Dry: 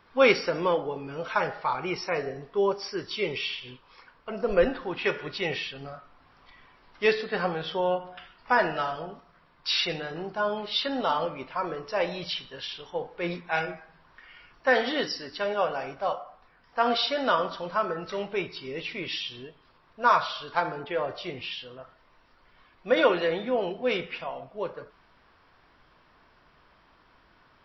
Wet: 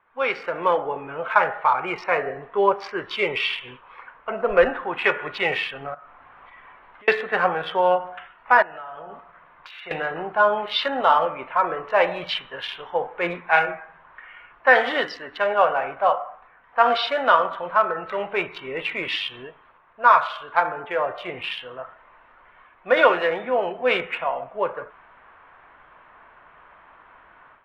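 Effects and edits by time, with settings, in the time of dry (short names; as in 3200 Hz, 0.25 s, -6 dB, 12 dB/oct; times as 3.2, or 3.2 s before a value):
5.94–7.08 compressor 10:1, threshold -51 dBFS
8.62–9.91 compressor 20:1, threshold -38 dBFS
whole clip: Wiener smoothing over 9 samples; three-band isolator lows -14 dB, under 580 Hz, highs -21 dB, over 3100 Hz; AGC gain up to 15 dB; gain -1.5 dB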